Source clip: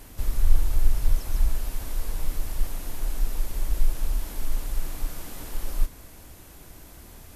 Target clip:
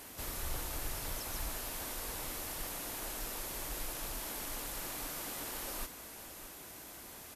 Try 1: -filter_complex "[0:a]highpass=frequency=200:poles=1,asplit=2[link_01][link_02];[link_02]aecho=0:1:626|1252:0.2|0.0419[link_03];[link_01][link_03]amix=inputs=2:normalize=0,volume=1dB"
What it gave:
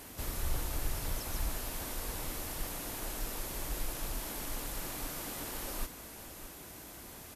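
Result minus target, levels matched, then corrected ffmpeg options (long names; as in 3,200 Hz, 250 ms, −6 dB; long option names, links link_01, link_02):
250 Hz band +3.0 dB
-filter_complex "[0:a]highpass=frequency=440:poles=1,asplit=2[link_01][link_02];[link_02]aecho=0:1:626|1252:0.2|0.0419[link_03];[link_01][link_03]amix=inputs=2:normalize=0,volume=1dB"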